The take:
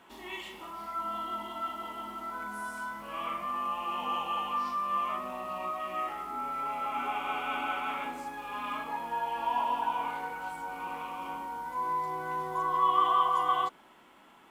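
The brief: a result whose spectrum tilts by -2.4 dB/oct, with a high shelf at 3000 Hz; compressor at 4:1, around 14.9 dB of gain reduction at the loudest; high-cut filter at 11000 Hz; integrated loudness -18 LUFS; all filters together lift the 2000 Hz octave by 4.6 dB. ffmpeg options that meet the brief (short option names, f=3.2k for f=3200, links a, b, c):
-af "lowpass=11k,equalizer=f=2k:t=o:g=4,highshelf=f=3k:g=6.5,acompressor=threshold=-38dB:ratio=4,volume=21.5dB"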